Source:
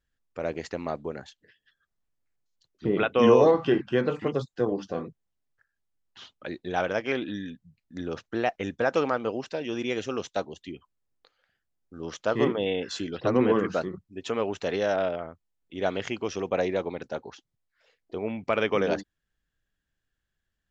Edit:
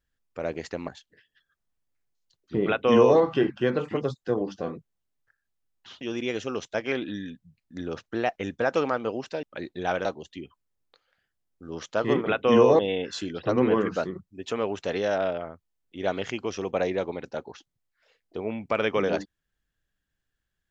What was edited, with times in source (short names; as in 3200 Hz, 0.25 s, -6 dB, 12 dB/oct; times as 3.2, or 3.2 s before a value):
0.88–1.19 cut
2.97–3.5 copy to 12.57
6.32–6.94 swap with 9.63–10.36